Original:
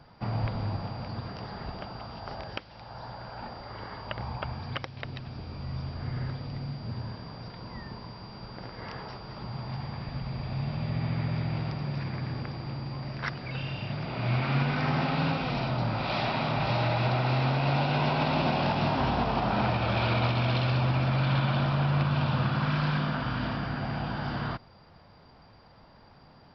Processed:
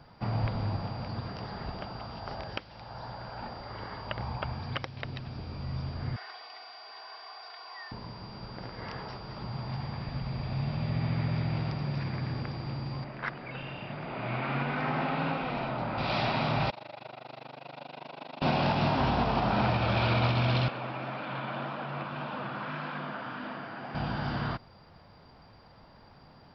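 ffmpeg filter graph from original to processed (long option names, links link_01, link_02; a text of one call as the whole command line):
ffmpeg -i in.wav -filter_complex "[0:a]asettb=1/sr,asplit=3[link_01][link_02][link_03];[link_01]atrim=end=6.164[link_04];[link_02]atrim=start=6.16:end=7.92,asetpts=PTS-STARTPTS,afade=type=in:duration=0.004:curve=qsin,afade=type=out:start_time=1.756:duration=0.004:curve=qsin,highpass=frequency=680:width=0.5412,highpass=frequency=680:width=1.3066,aecho=1:1:2.7:0.86,atrim=end_sample=77616[link_05];[link_03]atrim=start=7.916[link_06];[link_04][link_05]acrossfade=duration=0.004:curve1=hsin:curve2=qsin[link_07];[link_07][link_06]acrossfade=duration=0.004:curve1=qsin:curve2=hsin,asettb=1/sr,asplit=3[link_08][link_09][link_10];[link_08]atrim=end=13.044[link_11];[link_09]atrim=start=13.04:end=15.98,asetpts=PTS-STARTPTS,afade=type=in:duration=0.004:curve=qsin,afade=type=out:start_time=2.936:duration=0.004:curve=qsin,lowpass=2600,equalizer=frequency=86:width_type=o:width=1.5:gain=-14.5[link_12];[link_10]atrim=start=15.976[link_13];[link_11][link_12]acrossfade=duration=0.004:curve1=hsin:curve2=qsin[link_14];[link_14][link_13]acrossfade=duration=0.004:curve1=qsin:curve2=hsin,asettb=1/sr,asplit=3[link_15][link_16][link_17];[link_15]atrim=end=16.704[link_18];[link_16]atrim=start=16.7:end=18.42,asetpts=PTS-STARTPTS,afade=type=in:duration=0.004:curve=qsin,afade=type=out:start_time=1.716:duration=0.004:curve=qsin,equalizer=frequency=1500:width=0.4:gain=-13.5,tremolo=f=25:d=0.974,highpass=550,lowpass=3400[link_19];[link_17]atrim=start=18.416[link_20];[link_18][link_19]acrossfade=duration=0.004:curve1=hsin:curve2=qsin[link_21];[link_21][link_20]acrossfade=duration=0.004:curve1=qsin:curve2=hsin,asettb=1/sr,asplit=3[link_22][link_23][link_24];[link_22]atrim=end=20.684[link_25];[link_23]atrim=start=20.68:end=23.95,asetpts=PTS-STARTPTS,afade=type=in:duration=0.004:curve=qsin,afade=type=out:start_time=3.266:duration=0.004:curve=qsin,acrossover=split=3000[link_26][link_27];[link_27]acompressor=threshold=-58dB:ratio=4:attack=1:release=60[link_28];[link_26][link_28]amix=inputs=2:normalize=0,highpass=280,flanger=delay=3.6:depth=6.4:regen=-41:speed=1.8:shape=sinusoidal[link_29];[link_24]atrim=start=23.946[link_30];[link_25][link_29]acrossfade=duration=0.004:curve1=hsin:curve2=qsin[link_31];[link_31][link_30]acrossfade=duration=0.004:curve1=qsin:curve2=hsin" out.wav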